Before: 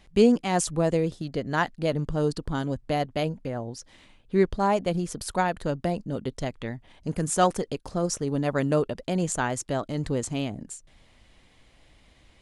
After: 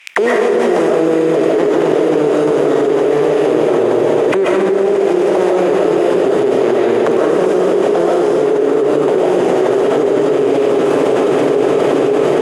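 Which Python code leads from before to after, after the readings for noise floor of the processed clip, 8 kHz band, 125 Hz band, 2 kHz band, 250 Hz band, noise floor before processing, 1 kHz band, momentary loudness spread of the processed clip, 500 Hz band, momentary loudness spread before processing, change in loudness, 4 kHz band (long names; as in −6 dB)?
−14 dBFS, can't be measured, +1.5 dB, +12.0 dB, +12.5 dB, −58 dBFS, +10.5 dB, 0 LU, +18.0 dB, 11 LU, +14.5 dB, +9.0 dB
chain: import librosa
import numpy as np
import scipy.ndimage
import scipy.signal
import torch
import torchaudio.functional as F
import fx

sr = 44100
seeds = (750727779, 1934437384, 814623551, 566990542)

y = fx.spec_flatten(x, sr, power=0.2)
y = scipy.signal.sosfilt(scipy.signal.butter(2, 50.0, 'highpass', fs=sr, output='sos'), y)
y = fx.spec_gate(y, sr, threshold_db=-15, keep='strong')
y = fx.peak_eq(y, sr, hz=4300.0, db=-10.0, octaves=0.26)
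y = fx.leveller(y, sr, passes=5)
y = fx.rider(y, sr, range_db=10, speed_s=0.5)
y = fx.auto_wah(y, sr, base_hz=400.0, top_hz=2400.0, q=6.1, full_db=-11.5, direction='down')
y = fx.echo_diffused(y, sr, ms=468, feedback_pct=69, wet_db=-11)
y = fx.rev_freeverb(y, sr, rt60_s=1.5, hf_ratio=1.0, predelay_ms=95, drr_db=-5.5)
y = fx.env_flatten(y, sr, amount_pct=100)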